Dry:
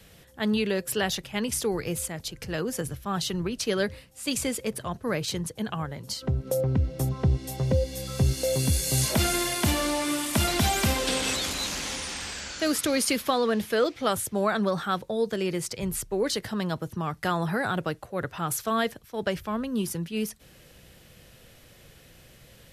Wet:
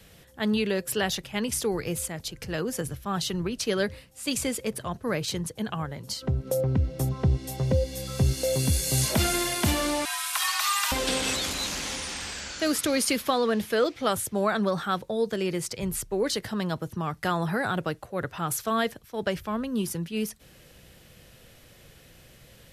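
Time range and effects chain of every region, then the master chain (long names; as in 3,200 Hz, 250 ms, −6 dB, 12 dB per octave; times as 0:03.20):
0:10.05–0:10.92: high-pass filter 480 Hz 24 dB per octave + frequency shifter +420 Hz + flutter between parallel walls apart 11.7 metres, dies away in 0.49 s
whole clip: no processing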